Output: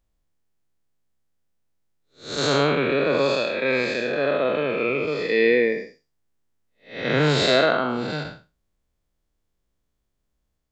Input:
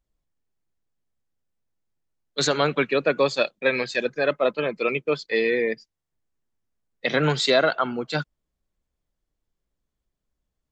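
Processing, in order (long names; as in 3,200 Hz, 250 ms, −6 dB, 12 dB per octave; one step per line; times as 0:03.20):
spectrum smeared in time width 224 ms
level +6 dB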